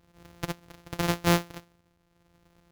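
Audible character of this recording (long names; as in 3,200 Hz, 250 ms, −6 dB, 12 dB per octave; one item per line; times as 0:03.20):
a buzz of ramps at a fixed pitch in blocks of 256 samples
tremolo triangle 0.88 Hz, depth 55%
aliases and images of a low sample rate 8,500 Hz, jitter 0%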